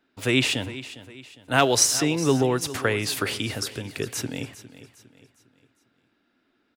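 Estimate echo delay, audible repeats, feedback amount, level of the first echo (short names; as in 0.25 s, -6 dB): 0.406 s, 3, 41%, -15.5 dB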